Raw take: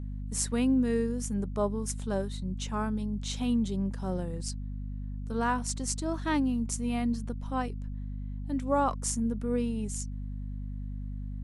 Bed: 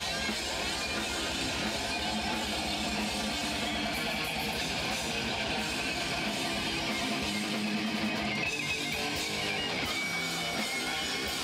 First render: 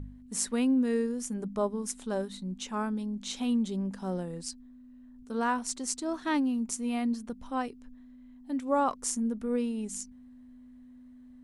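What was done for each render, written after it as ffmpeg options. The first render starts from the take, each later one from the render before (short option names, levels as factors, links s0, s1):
-af "bandreject=f=50:t=h:w=4,bandreject=f=100:t=h:w=4,bandreject=f=150:t=h:w=4,bandreject=f=200:t=h:w=4"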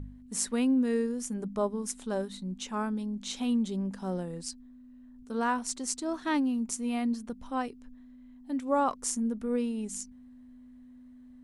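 -af anull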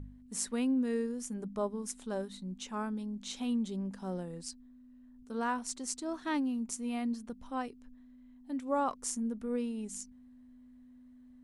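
-af "volume=0.596"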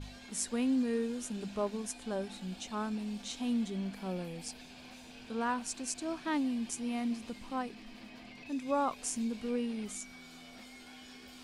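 -filter_complex "[1:a]volume=0.0944[s0];[0:a][s0]amix=inputs=2:normalize=0"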